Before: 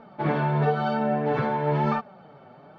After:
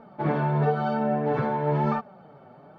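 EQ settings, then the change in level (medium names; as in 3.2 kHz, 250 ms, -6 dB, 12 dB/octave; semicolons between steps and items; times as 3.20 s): peaking EQ 3.3 kHz -6 dB 2 oct; 0.0 dB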